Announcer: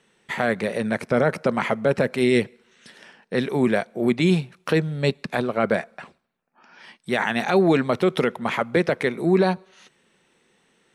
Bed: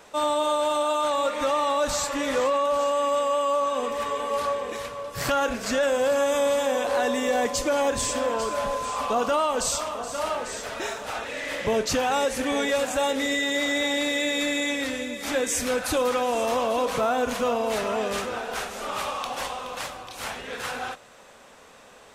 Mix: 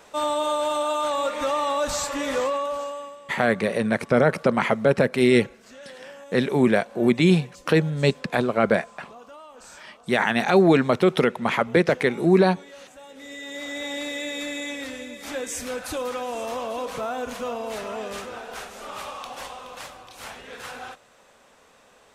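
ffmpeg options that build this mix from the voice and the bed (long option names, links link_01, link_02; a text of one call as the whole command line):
ffmpeg -i stem1.wav -i stem2.wav -filter_complex "[0:a]adelay=3000,volume=1.5dB[link_01];[1:a]volume=15.5dB,afade=type=out:start_time=2.38:duration=0.79:silence=0.0891251,afade=type=in:start_time=13.08:duration=0.89:silence=0.158489[link_02];[link_01][link_02]amix=inputs=2:normalize=0" out.wav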